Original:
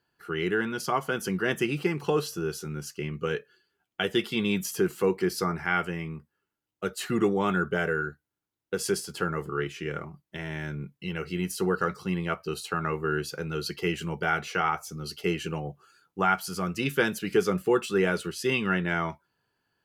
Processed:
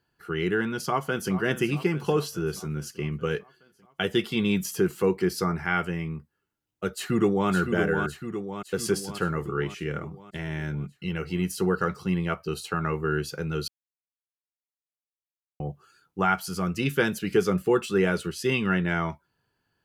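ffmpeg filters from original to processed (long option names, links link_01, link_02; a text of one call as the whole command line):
ffmpeg -i in.wav -filter_complex "[0:a]asplit=2[link_01][link_02];[link_02]afade=type=in:start_time=0.72:duration=0.01,afade=type=out:start_time=1.33:duration=0.01,aecho=0:1:420|840|1260|1680|2100|2520|2940|3360:0.211349|0.137377|0.0892949|0.0580417|0.0377271|0.0245226|0.0159397|0.0103608[link_03];[link_01][link_03]amix=inputs=2:normalize=0,asplit=2[link_04][link_05];[link_05]afade=type=in:start_time=6.93:duration=0.01,afade=type=out:start_time=7.5:duration=0.01,aecho=0:1:560|1120|1680|2240|2800|3360|3920|4480:0.501187|0.300712|0.180427|0.108256|0.0649539|0.0389723|0.0233834|0.01403[link_06];[link_04][link_06]amix=inputs=2:normalize=0,asplit=3[link_07][link_08][link_09];[link_07]atrim=end=13.68,asetpts=PTS-STARTPTS,afade=type=out:start_time=13.676:duration=0.004:curve=hsin[link_10];[link_08]atrim=start=13.68:end=15.6,asetpts=PTS-STARTPTS,volume=0[link_11];[link_09]atrim=start=15.6,asetpts=PTS-STARTPTS,afade=type=in:duration=0.004:curve=hsin[link_12];[link_10][link_11][link_12]concat=n=3:v=0:a=1,lowshelf=frequency=170:gain=7.5" out.wav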